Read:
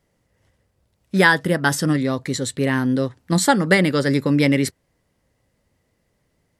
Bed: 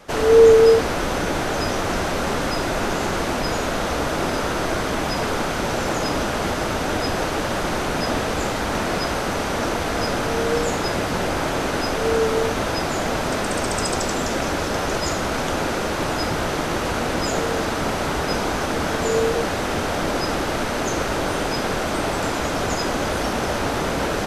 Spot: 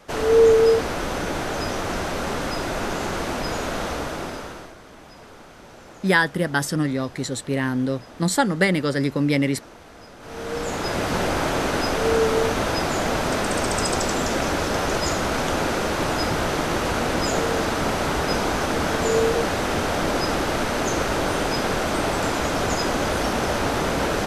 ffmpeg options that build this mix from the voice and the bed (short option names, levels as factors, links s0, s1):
-filter_complex "[0:a]adelay=4900,volume=0.668[s0];[1:a]volume=7.94,afade=t=out:st=3.83:d=0.91:silence=0.125893,afade=t=in:st=10.19:d=0.96:silence=0.0841395[s1];[s0][s1]amix=inputs=2:normalize=0"